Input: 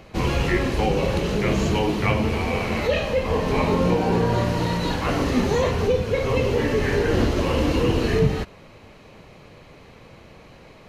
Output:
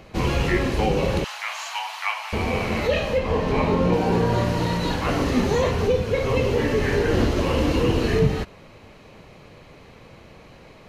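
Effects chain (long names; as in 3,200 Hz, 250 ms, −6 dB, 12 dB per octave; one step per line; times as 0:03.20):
0:01.24–0:02.33: Butterworth high-pass 770 Hz 48 dB per octave
0:03.17–0:03.92: high-shelf EQ 8,400 Hz → 5,500 Hz −10.5 dB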